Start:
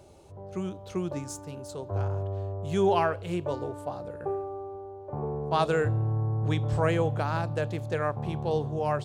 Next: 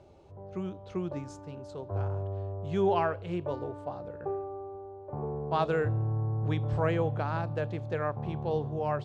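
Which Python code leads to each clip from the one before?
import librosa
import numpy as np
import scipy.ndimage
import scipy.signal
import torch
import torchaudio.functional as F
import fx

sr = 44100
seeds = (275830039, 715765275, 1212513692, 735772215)

y = scipy.signal.sosfilt(scipy.signal.butter(2, 5900.0, 'lowpass', fs=sr, output='sos'), x)
y = fx.high_shelf(y, sr, hz=4500.0, db=-10.0)
y = F.gain(torch.from_numpy(y), -2.5).numpy()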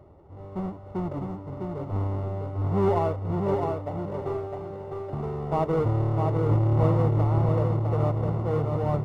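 y = fx.halfwave_hold(x, sr)
y = scipy.signal.savgol_filter(y, 65, 4, mode='constant')
y = fx.echo_feedback(y, sr, ms=656, feedback_pct=27, wet_db=-4.0)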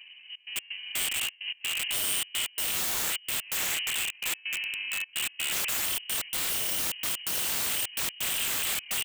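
y = fx.step_gate(x, sr, bpm=128, pattern='xxx.x.xx', floor_db=-24.0, edge_ms=4.5)
y = fx.freq_invert(y, sr, carrier_hz=3000)
y = (np.mod(10.0 ** (26.5 / 20.0) * y + 1.0, 2.0) - 1.0) / 10.0 ** (26.5 / 20.0)
y = F.gain(torch.from_numpy(y), 2.0).numpy()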